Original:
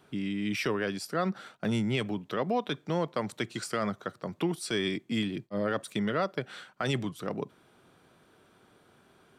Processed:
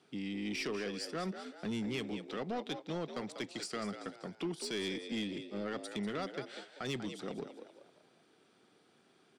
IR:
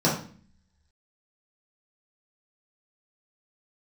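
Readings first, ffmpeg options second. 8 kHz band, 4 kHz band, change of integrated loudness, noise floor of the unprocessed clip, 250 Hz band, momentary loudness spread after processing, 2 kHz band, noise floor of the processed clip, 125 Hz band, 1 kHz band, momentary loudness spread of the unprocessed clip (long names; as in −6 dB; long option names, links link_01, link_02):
−5.0 dB, −4.5 dB, −7.5 dB, −63 dBFS, −7.0 dB, 7 LU, −7.5 dB, −68 dBFS, −10.5 dB, −9.5 dB, 6 LU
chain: -filter_complex "[0:a]aeval=exprs='if(lt(val(0),0),0.708*val(0),val(0))':channel_layout=same,highpass=190,equalizer=frequency=580:width_type=q:width=4:gain=-6,equalizer=frequency=1000:width_type=q:width=4:gain=-7,equalizer=frequency=1500:width_type=q:width=4:gain=-5,equalizer=frequency=4800:width_type=q:width=4:gain=5,lowpass=frequency=9400:width=0.5412,lowpass=frequency=9400:width=1.3066,asplit=2[link_01][link_02];[link_02]asplit=4[link_03][link_04][link_05][link_06];[link_03]adelay=193,afreqshift=66,volume=-11dB[link_07];[link_04]adelay=386,afreqshift=132,volume=-19dB[link_08];[link_05]adelay=579,afreqshift=198,volume=-26.9dB[link_09];[link_06]adelay=772,afreqshift=264,volume=-34.9dB[link_10];[link_07][link_08][link_09][link_10]amix=inputs=4:normalize=0[link_11];[link_01][link_11]amix=inputs=2:normalize=0,aeval=exprs='0.112*(cos(1*acos(clip(val(0)/0.112,-1,1)))-cos(1*PI/2))+0.00398*(cos(4*acos(clip(val(0)/0.112,-1,1)))-cos(4*PI/2))+0.0158*(cos(5*acos(clip(val(0)/0.112,-1,1)))-cos(5*PI/2))':channel_layout=same,volume=-7.5dB"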